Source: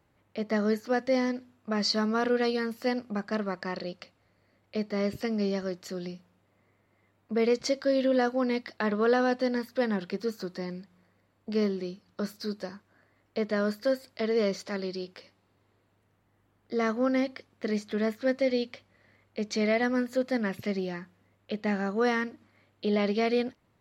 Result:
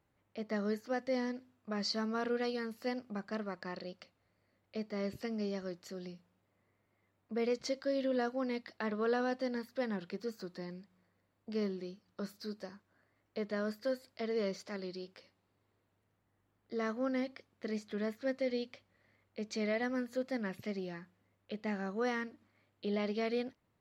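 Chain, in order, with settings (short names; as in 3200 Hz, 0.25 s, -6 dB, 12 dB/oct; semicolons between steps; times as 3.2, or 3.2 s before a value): wow and flutter 37 cents; gain -8.5 dB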